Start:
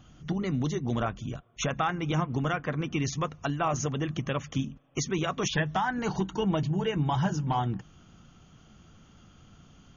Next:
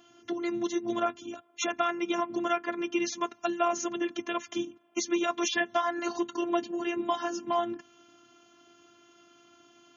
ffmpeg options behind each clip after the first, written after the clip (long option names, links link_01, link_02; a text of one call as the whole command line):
ffmpeg -i in.wav -af "afftfilt=real='hypot(re,im)*cos(PI*b)':imag='0':win_size=512:overlap=0.75,highpass=frequency=150:width=0.5412,highpass=frequency=150:width=1.3066,volume=4.5dB" out.wav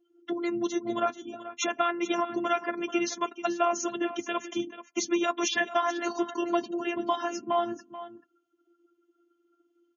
ffmpeg -i in.wav -af "afftdn=noise_reduction=31:noise_floor=-44,aecho=1:1:434:0.2,volume=1.5dB" out.wav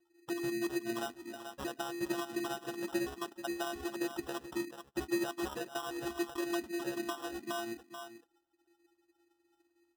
ffmpeg -i in.wav -filter_complex "[0:a]acrossover=split=420[link_01][link_02];[link_02]acompressor=threshold=-39dB:ratio=2.5[link_03];[link_01][link_03]amix=inputs=2:normalize=0,acrusher=samples=20:mix=1:aa=0.000001,volume=-4.5dB" out.wav